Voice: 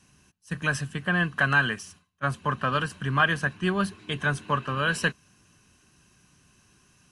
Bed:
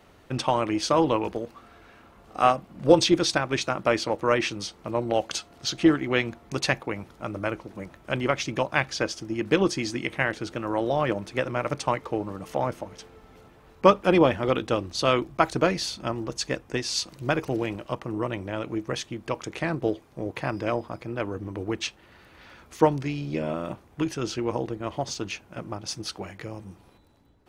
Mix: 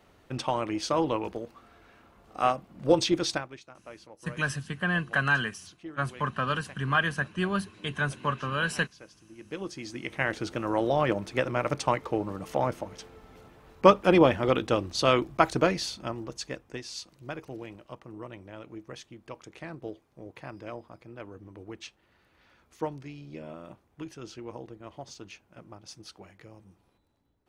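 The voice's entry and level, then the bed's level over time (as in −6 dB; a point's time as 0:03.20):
3.75 s, −3.0 dB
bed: 0:03.35 −5 dB
0:03.60 −23.5 dB
0:09.14 −23.5 dB
0:10.37 −0.5 dB
0:15.52 −0.5 dB
0:17.13 −13 dB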